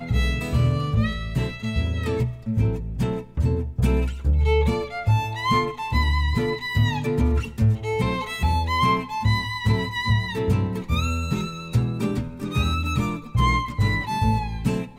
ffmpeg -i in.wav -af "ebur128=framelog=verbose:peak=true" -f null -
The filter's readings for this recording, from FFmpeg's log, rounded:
Integrated loudness:
  I:         -23.6 LUFS
  Threshold: -33.6 LUFS
Loudness range:
  LRA:         2.2 LU
  Threshold: -43.6 LUFS
  LRA low:   -24.9 LUFS
  LRA high:  -22.7 LUFS
True peak:
  Peak:       -9.4 dBFS